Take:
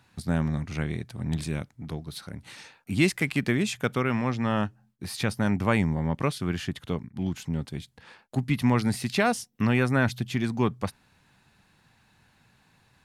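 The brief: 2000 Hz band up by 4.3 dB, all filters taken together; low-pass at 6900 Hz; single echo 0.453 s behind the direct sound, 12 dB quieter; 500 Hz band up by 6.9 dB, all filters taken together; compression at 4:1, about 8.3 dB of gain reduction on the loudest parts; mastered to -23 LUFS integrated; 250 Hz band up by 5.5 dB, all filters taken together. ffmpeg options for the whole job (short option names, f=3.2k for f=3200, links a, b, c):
-af "lowpass=6.9k,equalizer=f=250:t=o:g=5,equalizer=f=500:t=o:g=7,equalizer=f=2k:t=o:g=5,acompressor=threshold=-23dB:ratio=4,aecho=1:1:453:0.251,volume=6dB"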